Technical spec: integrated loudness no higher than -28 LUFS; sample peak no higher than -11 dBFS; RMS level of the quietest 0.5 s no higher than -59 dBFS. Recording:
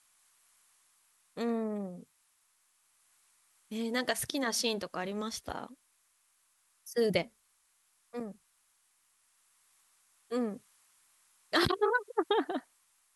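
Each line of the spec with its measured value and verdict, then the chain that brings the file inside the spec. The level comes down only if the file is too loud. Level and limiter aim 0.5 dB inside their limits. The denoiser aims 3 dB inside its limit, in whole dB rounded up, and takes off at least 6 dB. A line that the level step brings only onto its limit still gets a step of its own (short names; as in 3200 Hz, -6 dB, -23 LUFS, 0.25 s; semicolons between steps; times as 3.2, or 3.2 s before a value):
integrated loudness -33.5 LUFS: OK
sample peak -14.5 dBFS: OK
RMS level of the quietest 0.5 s -72 dBFS: OK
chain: none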